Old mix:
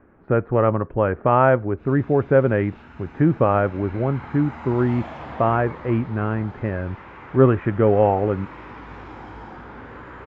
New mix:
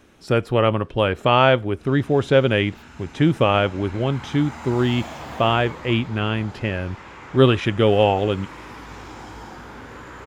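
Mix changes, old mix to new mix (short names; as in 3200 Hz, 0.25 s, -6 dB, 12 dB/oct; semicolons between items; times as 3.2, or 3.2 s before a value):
speech: remove LPF 1800 Hz 24 dB/oct; master: remove LPF 2300 Hz 12 dB/oct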